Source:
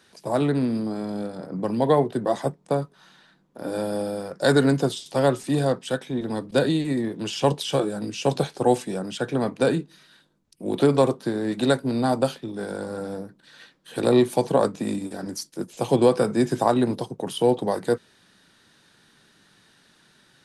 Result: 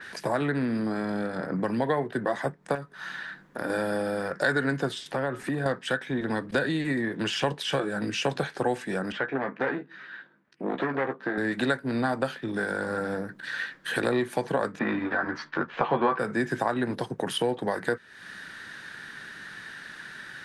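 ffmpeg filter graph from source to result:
-filter_complex "[0:a]asettb=1/sr,asplit=3[s0][s1][s2];[s0]atrim=end=2.754[s3];[s1]atrim=start=2.75:end=3.7,asetpts=PTS-STARTPTS,afade=t=in:d=0.004:c=qsin,afade=t=out:st=0.946:d=0.004:c=qsin,aeval=exprs='0.119*(abs(mod(val(0)/0.119+3,4)-2)-1)':c=same,acompressor=threshold=0.00708:ratio=1.5:attack=3.2:release=140:knee=1:detection=peak[s4];[s2]atrim=start=3.696[s5];[s3][s4]acrossfade=d=0.004:c1=hsin:c2=qsin[s6];[s6][s5]acrossfade=d=0.004:c1=qsin:c2=hsin,asettb=1/sr,asplit=3[s7][s8][s9];[s7]atrim=end=5.074[s10];[s8]atrim=start=5.07:end=5.66,asetpts=PTS-STARTPTS,afade=t=in:d=0.004:c=qsin,afade=t=out:st=0.586:d=0.004:c=qsin,equalizer=f=5700:t=o:w=2.2:g=-9.5,acompressor=threshold=0.0282:ratio=2:attack=3.2:release=140:knee=1:detection=peak[s11];[s9]atrim=start=5.656[s12];[s10][s11]acrossfade=d=0.004:c1=hsin:c2=qsin[s13];[s13][s12]acrossfade=d=0.004:c1=qsin:c2=hsin,asettb=1/sr,asplit=3[s14][s15][s16];[s14]atrim=end=9.124[s17];[s15]atrim=start=9.12:end=11.38,asetpts=PTS-STARTPTS,afade=t=in:d=0.004:c=qsin,afade=t=out:st=2.256:d=0.004:c=qsin,aeval=exprs='(tanh(11.2*val(0)+0.7)-tanh(0.7))/11.2':c=same,highpass=210,lowpass=2300,asplit=2[s18][s19];[s19]adelay=15,volume=0.447[s20];[s18][s20]amix=inputs=2:normalize=0,atrim=end_sample=99666[s21];[s16]atrim=start=11.376[s22];[s17][s21]acrossfade=d=0.004:c1=hsin:c2=qsin[s23];[s23][s22]acrossfade=d=0.004:c1=qsin:c2=hsin,asettb=1/sr,asplit=3[s24][s25][s26];[s24]atrim=end=14.794[s27];[s25]atrim=start=14.79:end=16.19,asetpts=PTS-STARTPTS,afade=t=in:d=0.004:c=qsin,afade=t=out:st=1.396:d=0.004:c=qsin,lowpass=f=3600:w=0.5412,lowpass=f=3600:w=1.3066,equalizer=f=1100:t=o:w=1.2:g=13.5,asplit=2[s28][s29];[s29]adelay=13,volume=0.631[s30];[s28][s30]amix=inputs=2:normalize=0,atrim=end_sample=61740[s31];[s26]atrim=start=16.186[s32];[s27][s31]acrossfade=d=0.004:c1=hsin:c2=qsin[s33];[s33][s32]acrossfade=d=0.004:c1=qsin:c2=hsin,equalizer=f=1700:t=o:w=0.84:g=15,acompressor=threshold=0.0141:ratio=3,adynamicequalizer=threshold=0.002:dfrequency=4400:dqfactor=0.7:tfrequency=4400:tqfactor=0.7:attack=5:release=100:ratio=0.375:range=2.5:mode=cutabove:tftype=highshelf,volume=2.51"

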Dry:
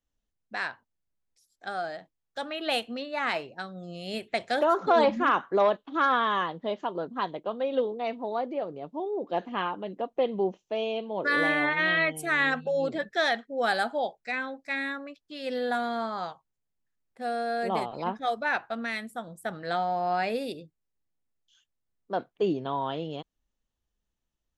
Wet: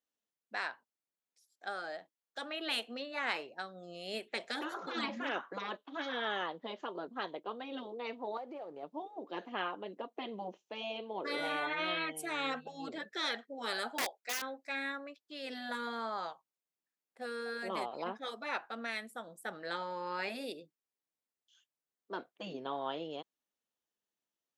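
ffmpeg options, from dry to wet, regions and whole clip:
-filter_complex "[0:a]asettb=1/sr,asplit=3[s0][s1][s2];[s0]atrim=end=8.374[s3];[s1]atrim=start=8.37:end=8.83,asetpts=PTS-STARTPTS,afade=t=in:d=0.004:c=qsin,afade=t=out:st=0.456:d=0.004:c=qsin,aeval=exprs='if(lt(val(0),0),0.708*val(0),val(0))':c=same,equalizer=f=840:w=5.4:g=6.5,acompressor=threshold=0.0178:ratio=6:attack=3.2:release=140:knee=1:detection=peak[s4];[s2]atrim=start=8.826[s5];[s3][s4]acrossfade=d=0.004:c1=hsin:c2=qsin[s6];[s6][s5]acrossfade=d=0.004:c1=qsin:c2=hsin,asettb=1/sr,asplit=3[s7][s8][s9];[s7]atrim=end=13.984[s10];[s8]atrim=start=13.98:end=14.42,asetpts=PTS-STARTPTS,afade=t=in:d=0.004:c=qsin,afade=t=out:st=0.436:d=0.004:c=qsin,highpass=390,aeval=exprs='(mod(15.8*val(0)+1,2)-1)/15.8':c=same[s11];[s9]atrim=start=14.416[s12];[s10][s11]acrossfade=d=0.004:c1=hsin:c2=qsin[s13];[s13][s12]acrossfade=d=0.004:c1=qsin:c2=hsin,highpass=310,afftfilt=real='re*lt(hypot(re,im),0.2)':imag='im*lt(hypot(re,im),0.2)':win_size=1024:overlap=0.75,volume=0.631"

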